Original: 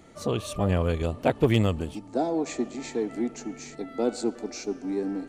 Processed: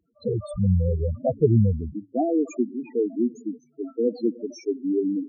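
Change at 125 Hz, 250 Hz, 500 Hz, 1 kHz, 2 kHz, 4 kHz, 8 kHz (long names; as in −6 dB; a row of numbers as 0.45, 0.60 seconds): +5.0 dB, +3.5 dB, +2.5 dB, −3.5 dB, below −15 dB, below −10 dB, can't be measured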